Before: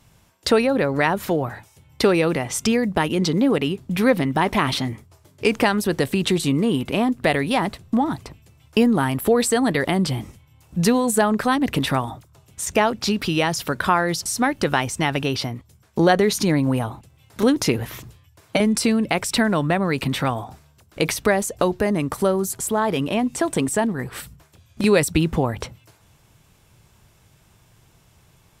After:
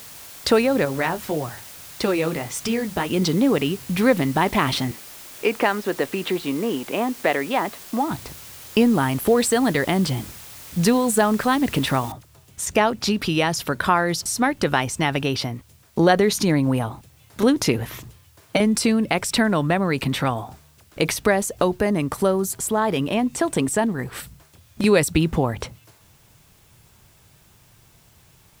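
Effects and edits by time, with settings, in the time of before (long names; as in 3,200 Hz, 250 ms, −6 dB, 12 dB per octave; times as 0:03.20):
0:00.85–0:03.10: flanger 1.7 Hz, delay 5 ms, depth 8.4 ms, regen −43%
0:04.91–0:08.11: band-pass filter 310–2,700 Hz
0:12.12: noise floor change −41 dB −59 dB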